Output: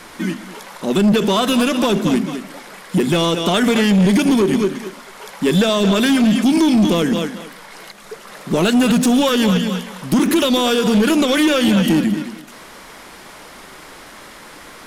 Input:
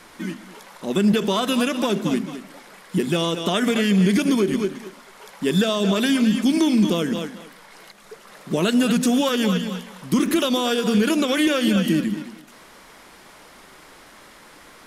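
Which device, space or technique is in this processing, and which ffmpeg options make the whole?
saturation between pre-emphasis and de-emphasis: -af "highshelf=frequency=4200:gain=6.5,asoftclip=type=tanh:threshold=-17dB,highshelf=frequency=4200:gain=-6.5,volume=8dB"

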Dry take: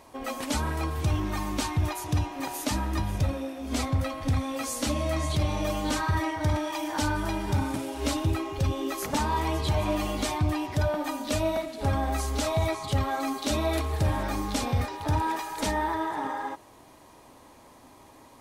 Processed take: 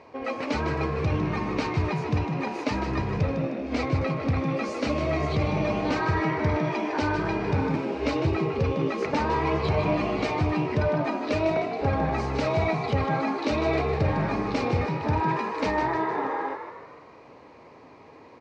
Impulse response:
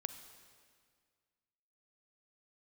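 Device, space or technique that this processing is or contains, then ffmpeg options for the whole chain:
frequency-shifting delay pedal into a guitar cabinet: -filter_complex "[0:a]asplit=6[link_01][link_02][link_03][link_04][link_05][link_06];[link_02]adelay=154,afreqshift=67,volume=-8dB[link_07];[link_03]adelay=308,afreqshift=134,volume=-14.6dB[link_08];[link_04]adelay=462,afreqshift=201,volume=-21.1dB[link_09];[link_05]adelay=616,afreqshift=268,volume=-27.7dB[link_10];[link_06]adelay=770,afreqshift=335,volume=-34.2dB[link_11];[link_01][link_07][link_08][link_09][link_10][link_11]amix=inputs=6:normalize=0,highpass=79,equalizer=frequency=150:width_type=q:width=4:gain=3,equalizer=frequency=460:width_type=q:width=4:gain=9,equalizer=frequency=2300:width_type=q:width=4:gain=6,equalizer=frequency=3400:width_type=q:width=4:gain=-9,lowpass=frequency=4500:width=0.5412,lowpass=frequency=4500:width=1.3066,volume=1dB"

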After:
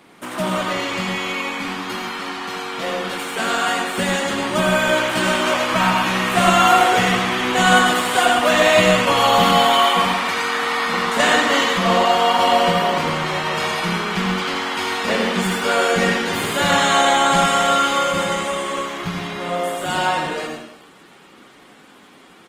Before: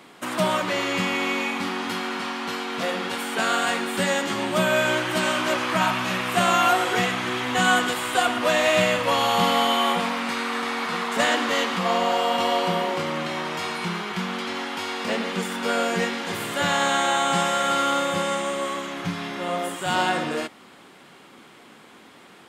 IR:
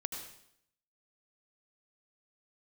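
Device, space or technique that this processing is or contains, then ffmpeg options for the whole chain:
speakerphone in a meeting room: -filter_complex "[1:a]atrim=start_sample=2205[link_01];[0:a][link_01]afir=irnorm=-1:irlink=0,asplit=2[link_02][link_03];[link_03]adelay=80,highpass=300,lowpass=3400,asoftclip=type=hard:threshold=-15dB,volume=-11dB[link_04];[link_02][link_04]amix=inputs=2:normalize=0,dynaudnorm=framelen=320:gausssize=31:maxgain=7dB,volume=1.5dB" -ar 48000 -c:a libopus -b:a 20k

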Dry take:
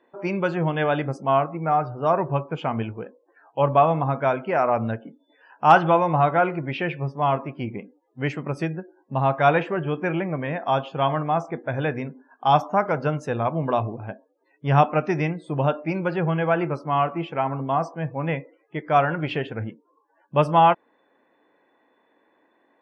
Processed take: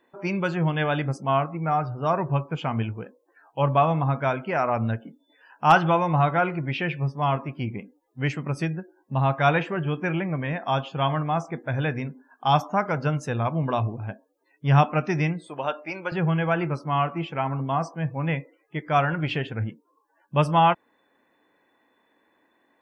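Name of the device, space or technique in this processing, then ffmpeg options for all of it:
smiley-face EQ: -filter_complex "[0:a]lowshelf=frequency=110:gain=8,equalizer=frequency=500:width_type=o:width=2:gain=-5,highshelf=frequency=5300:gain=8,asettb=1/sr,asplit=3[link_01][link_02][link_03];[link_01]atrim=end=15.474[link_04];[link_02]atrim=start=15.47:end=16.12,asetpts=PTS-STARTPTS,afade=type=in:duration=0.004:curve=qsin,afade=type=out:start_time=0.646:duration=0.004:curve=qsin,highpass=460[link_05];[link_03]atrim=start=16.116[link_06];[link_04][link_05]acrossfade=duration=0.004:curve1=hsin:curve2=qsin[link_07];[link_07][link_06]acrossfade=duration=0.004:curve1=qsin:curve2=hsin"

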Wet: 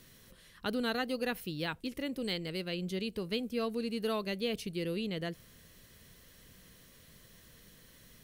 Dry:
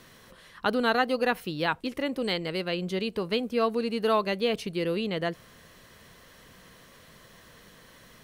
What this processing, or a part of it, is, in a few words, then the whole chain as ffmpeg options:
smiley-face EQ: -af "lowshelf=frequency=97:gain=6,equalizer=frequency=950:width_type=o:width=1.7:gain=-9,highshelf=frequency=9600:gain=8.5,volume=-5dB"

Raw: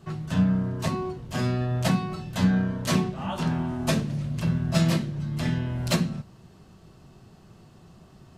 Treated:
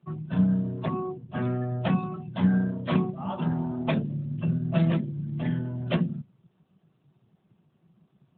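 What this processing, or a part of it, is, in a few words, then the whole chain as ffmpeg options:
mobile call with aggressive noise cancelling: -af "highpass=120,afftdn=noise_reduction=15:noise_floor=-35" -ar 8000 -c:a libopencore_amrnb -b:a 12200

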